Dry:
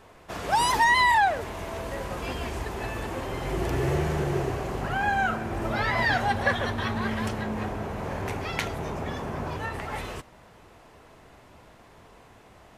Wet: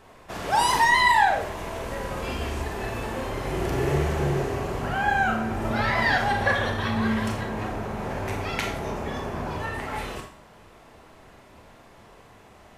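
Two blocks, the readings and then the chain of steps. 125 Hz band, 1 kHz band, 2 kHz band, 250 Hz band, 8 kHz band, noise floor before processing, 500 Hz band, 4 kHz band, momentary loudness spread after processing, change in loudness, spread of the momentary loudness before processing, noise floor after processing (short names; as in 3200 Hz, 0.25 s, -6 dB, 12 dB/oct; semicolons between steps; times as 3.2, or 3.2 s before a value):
+1.5 dB, +1.5 dB, +2.0 dB, +2.5 dB, +2.0 dB, -53 dBFS, +2.0 dB, +2.0 dB, 12 LU, +2.0 dB, 13 LU, -51 dBFS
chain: Schroeder reverb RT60 0.46 s, combs from 28 ms, DRR 2.5 dB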